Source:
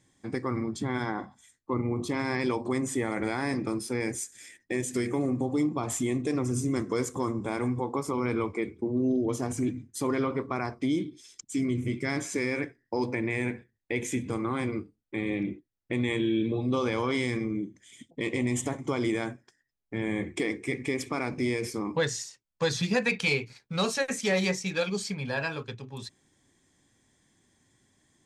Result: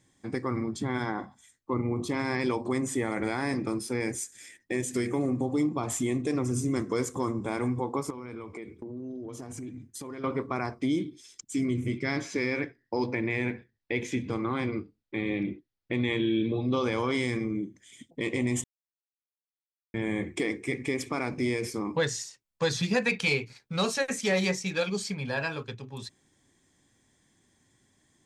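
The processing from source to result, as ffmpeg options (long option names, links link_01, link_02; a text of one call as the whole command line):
ffmpeg -i in.wav -filter_complex "[0:a]asettb=1/sr,asplit=3[link_01][link_02][link_03];[link_01]atrim=end=8.104[link_04];[link_02]atrim=start=8.1:end=10.24,asetpts=PTS-STARTPTS,afade=type=in:duration=0.004:curve=qsin,afade=type=out:start_time=2.136:duration=0.004:curve=qsin,acompressor=threshold=-37dB:ratio=5:attack=3.2:release=140:knee=1:detection=peak[link_05];[link_03]atrim=start=10.236[link_06];[link_04][link_05]acrossfade=duration=0.004:curve1=hsin:curve2=qsin[link_07];[link_07][link_06]acrossfade=duration=0.004:curve1=qsin:curve2=hsin,asettb=1/sr,asplit=3[link_08][link_09][link_10];[link_08]atrim=end=11.984[link_11];[link_09]atrim=start=11.98:end=16.84,asetpts=PTS-STARTPTS,afade=type=in:duration=0.004:curve=qsin,afade=type=out:start_time=4.856:duration=0.004:curve=qsin,highshelf=frequency=6400:width_type=q:width=1.5:gain=-10.5[link_12];[link_10]atrim=start=16.836[link_13];[link_11][link_12]acrossfade=duration=0.004:curve1=hsin:curve2=qsin[link_14];[link_14][link_13]acrossfade=duration=0.004:curve1=qsin:curve2=hsin,asplit=3[link_15][link_16][link_17];[link_15]atrim=end=18.64,asetpts=PTS-STARTPTS,afade=type=out:start_time=18.636:duration=0.004:curve=hsin[link_18];[link_16]atrim=start=18.64:end=19.94,asetpts=PTS-STARTPTS,volume=0[link_19];[link_17]atrim=start=19.94,asetpts=PTS-STARTPTS,afade=type=in:duration=0.004:curve=hsin[link_20];[link_18][link_19][link_20]concat=n=3:v=0:a=1" out.wav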